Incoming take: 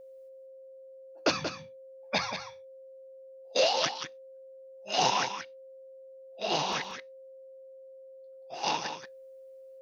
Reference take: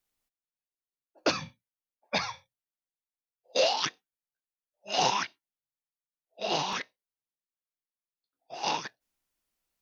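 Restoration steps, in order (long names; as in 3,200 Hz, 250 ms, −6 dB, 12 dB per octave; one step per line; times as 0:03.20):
notch filter 530 Hz, Q 30
repair the gap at 0:06.84, 2.2 ms
echo removal 182 ms −8.5 dB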